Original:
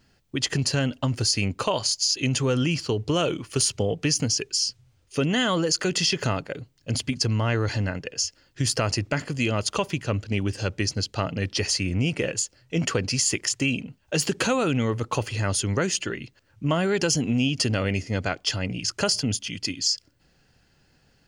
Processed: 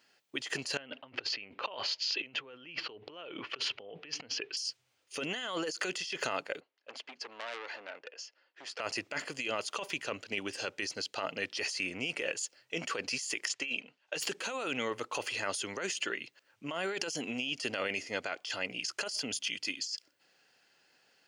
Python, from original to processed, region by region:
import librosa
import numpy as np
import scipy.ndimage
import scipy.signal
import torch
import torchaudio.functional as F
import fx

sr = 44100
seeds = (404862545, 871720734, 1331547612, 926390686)

y = fx.chain(x, sr, fx.lowpass(hz=3300.0, slope=24),
    fx.over_compress(threshold_db=-36.0, ratio=-1.0), at=(0.77, 4.57))
y = fx.chain(y, sr, fx.highpass(hz=510.0, slope=12),
    fx.spacing_loss(db_at_10k=30),
    fx.transformer_sat(knee_hz=3200.0), at=(6.6, 8.8))
y = fx.chain(y, sr, fx.lowpass(hz=5300.0, slope=12),
    fx.low_shelf(hz=260.0, db=-10.0), at=(13.48, 14.16))
y = scipy.signal.sosfilt(scipy.signal.butter(2, 460.0, 'highpass', fs=sr, output='sos'), y)
y = fx.peak_eq(y, sr, hz=2600.0, db=3.5, octaves=1.2)
y = fx.over_compress(y, sr, threshold_db=-29.0, ratio=-1.0)
y = y * 10.0 ** (-6.0 / 20.0)